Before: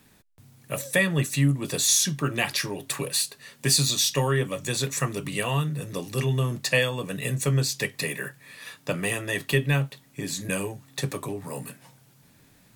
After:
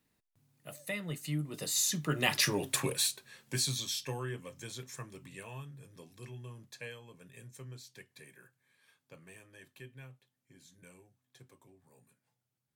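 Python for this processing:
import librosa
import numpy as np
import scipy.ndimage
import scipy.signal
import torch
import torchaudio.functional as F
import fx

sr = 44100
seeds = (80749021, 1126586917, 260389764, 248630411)

y = fx.doppler_pass(x, sr, speed_mps=23, closest_m=6.6, pass_at_s=2.57)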